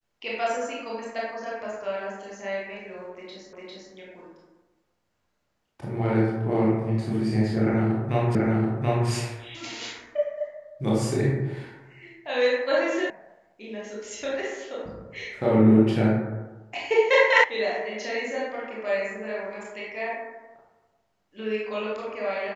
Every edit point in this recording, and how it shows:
3.53 s: repeat of the last 0.4 s
8.35 s: repeat of the last 0.73 s
13.10 s: sound stops dead
17.44 s: sound stops dead

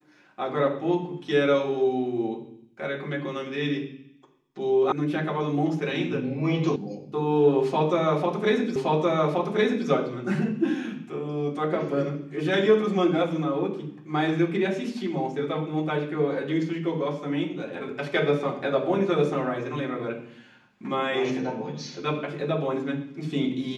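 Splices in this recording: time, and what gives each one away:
4.92 s: sound stops dead
6.76 s: sound stops dead
8.76 s: repeat of the last 1.12 s

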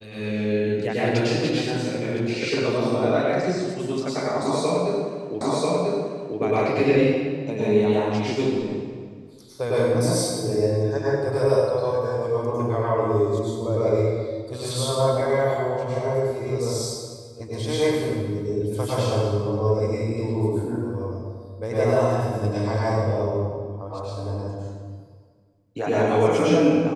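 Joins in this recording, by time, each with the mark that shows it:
5.41 s: repeat of the last 0.99 s

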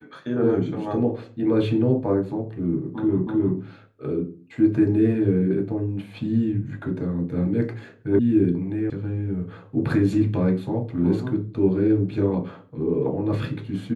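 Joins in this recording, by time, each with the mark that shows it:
3.27 s: repeat of the last 0.31 s
8.19 s: sound stops dead
8.90 s: sound stops dead

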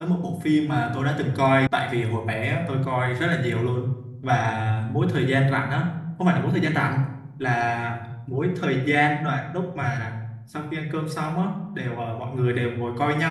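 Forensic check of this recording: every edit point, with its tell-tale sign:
1.67 s: sound stops dead

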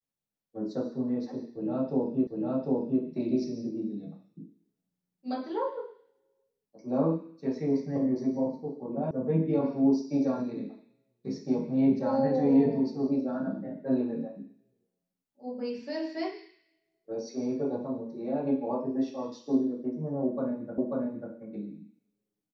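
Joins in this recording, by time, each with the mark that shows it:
2.27 s: repeat of the last 0.75 s
9.11 s: sound stops dead
20.78 s: repeat of the last 0.54 s

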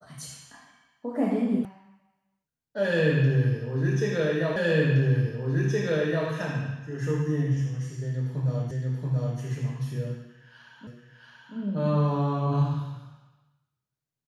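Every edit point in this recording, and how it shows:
1.65 s: sound stops dead
4.56 s: repeat of the last 1.72 s
8.71 s: repeat of the last 0.68 s
10.87 s: repeat of the last 0.68 s

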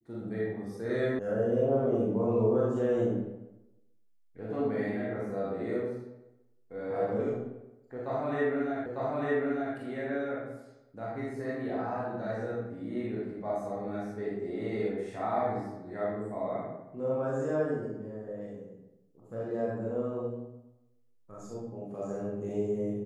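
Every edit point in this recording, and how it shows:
1.19 s: sound stops dead
8.86 s: repeat of the last 0.9 s

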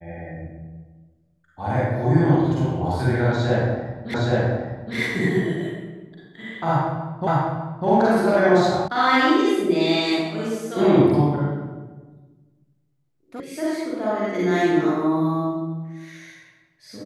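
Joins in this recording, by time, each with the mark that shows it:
4.14 s: repeat of the last 0.82 s
7.27 s: repeat of the last 0.6 s
8.88 s: sound stops dead
13.40 s: sound stops dead

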